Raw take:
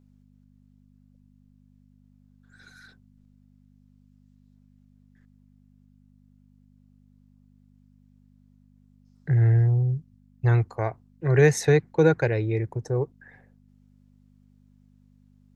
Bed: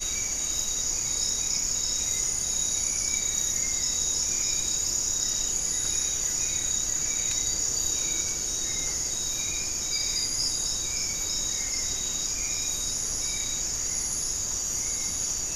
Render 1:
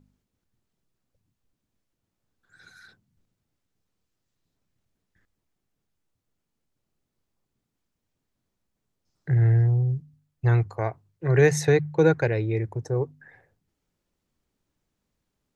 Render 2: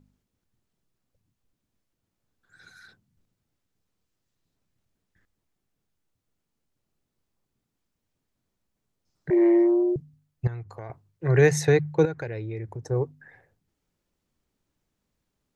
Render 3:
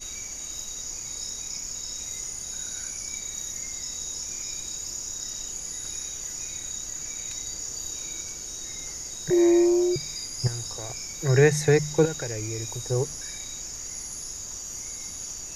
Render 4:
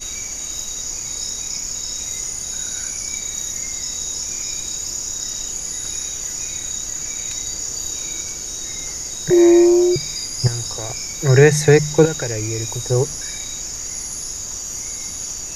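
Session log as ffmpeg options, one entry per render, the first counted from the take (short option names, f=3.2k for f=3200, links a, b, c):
-af "bandreject=f=50:t=h:w=4,bandreject=f=100:t=h:w=4,bandreject=f=150:t=h:w=4,bandreject=f=200:t=h:w=4,bandreject=f=250:t=h:w=4"
-filter_complex "[0:a]asettb=1/sr,asplit=3[a][b][c];[a]atrim=end=9.304[d];[b]atrim=start=9.3:end=9.96,asetpts=PTS-STARTPTS,afade=t=in:d=0.004:c=qsin,afade=t=out:st=0.656:d=0.004:c=qsin,afreqshift=230[e];[c]atrim=start=9.956[f];[d][e]acrossfade=d=0.004:c1=hsin:c2=qsin[g];[g][f]acrossfade=d=0.004:c1=qsin:c2=hsin,asettb=1/sr,asplit=3[h][i][j];[h]atrim=end=10.474[k];[i]atrim=start=10.47:end=10.9,asetpts=PTS-STARTPTS,afade=t=in:d=0.004:c=qsin,afade=t=out:st=0.426:d=0.004:c=qsin,acompressor=threshold=-38dB:ratio=3:attack=3.2:release=140:knee=1:detection=peak[l];[j]atrim=start=10.896[m];[k][l]acrossfade=d=0.004:c1=hsin:c2=qsin[n];[n][m]acrossfade=d=0.004:c1=qsin:c2=hsin,asettb=1/sr,asplit=3[o][p][q];[o]atrim=end=12.054[r];[p]atrim=start=12.05:end=12.91,asetpts=PTS-STARTPTS,afade=t=in:d=0.004:c=qsin,afade=t=out:st=0.856:d=0.004:c=qsin,acompressor=threshold=-33dB:ratio=2.5:attack=3.2:release=140:knee=1:detection=peak[s];[q]atrim=start=12.906[t];[r][s]acrossfade=d=0.004:c1=hsin:c2=qsin[u];[u][t]acrossfade=d=0.004:c1=qsin:c2=hsin"
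-filter_complex "[1:a]volume=-7dB[a];[0:a][a]amix=inputs=2:normalize=0"
-af "volume=8dB,alimiter=limit=-1dB:level=0:latency=1"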